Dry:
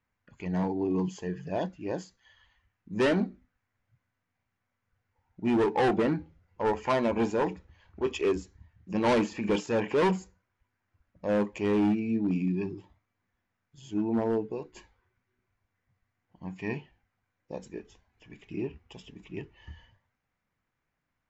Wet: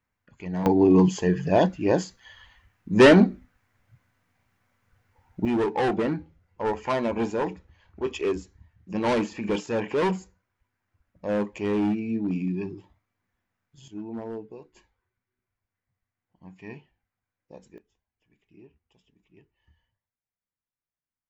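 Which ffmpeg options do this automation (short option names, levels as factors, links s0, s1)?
-af "asetnsamples=n=441:p=0,asendcmd='0.66 volume volume 11.5dB;5.45 volume volume 0.5dB;13.88 volume volume -7.5dB;17.78 volume volume -18dB',volume=1"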